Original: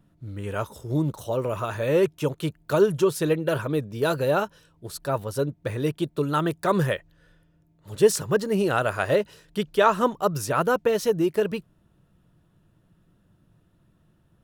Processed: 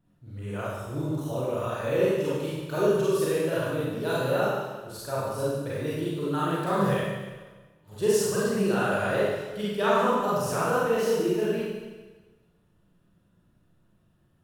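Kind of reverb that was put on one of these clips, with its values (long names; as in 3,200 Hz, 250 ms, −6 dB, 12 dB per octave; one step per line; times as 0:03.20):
four-comb reverb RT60 1.3 s, combs from 31 ms, DRR −8.5 dB
level −11 dB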